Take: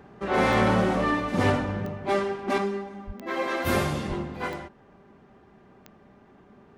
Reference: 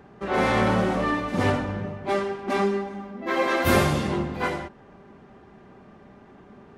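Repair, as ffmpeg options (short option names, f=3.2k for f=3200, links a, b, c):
-filter_complex "[0:a]adeclick=t=4,asplit=3[a][b][c];[a]afade=t=out:st=3.06:d=0.02[d];[b]highpass=f=140:w=0.5412,highpass=f=140:w=1.3066,afade=t=in:st=3.06:d=0.02,afade=t=out:st=3.18:d=0.02[e];[c]afade=t=in:st=3.18:d=0.02[f];[d][e][f]amix=inputs=3:normalize=0,asplit=3[g][h][i];[g]afade=t=out:st=4.08:d=0.02[j];[h]highpass=f=140:w=0.5412,highpass=f=140:w=1.3066,afade=t=in:st=4.08:d=0.02,afade=t=out:st=4.2:d=0.02[k];[i]afade=t=in:st=4.2:d=0.02[l];[j][k][l]amix=inputs=3:normalize=0,asetnsamples=n=441:p=0,asendcmd='2.58 volume volume 5dB',volume=0dB"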